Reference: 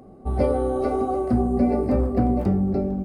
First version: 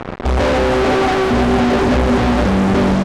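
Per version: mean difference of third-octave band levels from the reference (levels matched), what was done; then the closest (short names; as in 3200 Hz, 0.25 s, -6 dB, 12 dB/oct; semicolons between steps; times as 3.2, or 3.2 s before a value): 11.0 dB: high shelf 6000 Hz -12 dB; fuzz box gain 49 dB, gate -43 dBFS; air absorption 76 m; echo 0.493 s -8.5 dB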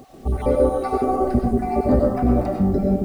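4.5 dB: random spectral dropouts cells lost 35%; requantised 10-bit, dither none; digital reverb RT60 0.6 s, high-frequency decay 0.55×, pre-delay 60 ms, DRR 1 dB; gain +4 dB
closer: second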